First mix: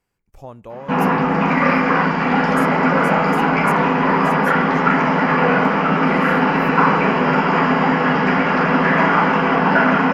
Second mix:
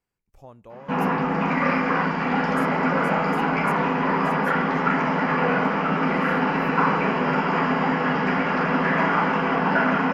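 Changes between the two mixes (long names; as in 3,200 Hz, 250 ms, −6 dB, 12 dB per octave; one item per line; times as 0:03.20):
speech −9.0 dB
background −6.0 dB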